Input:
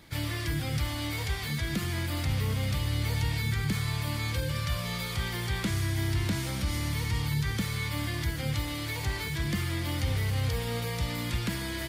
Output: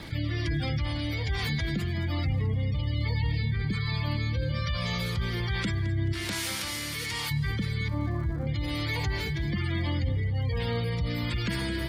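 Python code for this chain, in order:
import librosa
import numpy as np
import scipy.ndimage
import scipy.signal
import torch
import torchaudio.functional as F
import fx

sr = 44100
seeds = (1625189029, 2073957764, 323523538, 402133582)

p1 = fx.highpass(x, sr, hz=980.0, slope=6, at=(6.12, 7.3), fade=0.02)
p2 = fx.spec_gate(p1, sr, threshold_db=-25, keep='strong')
p3 = fx.cheby2_lowpass(p2, sr, hz=4400.0, order=4, stop_db=60, at=(7.88, 8.47))
p4 = fx.dmg_crackle(p3, sr, seeds[0], per_s=160.0, level_db=-50.0)
p5 = fx.rotary(p4, sr, hz=1.2)
p6 = p5 + fx.echo_feedback(p5, sr, ms=216, feedback_pct=46, wet_db=-15, dry=0)
y = fx.env_flatten(p6, sr, amount_pct=50)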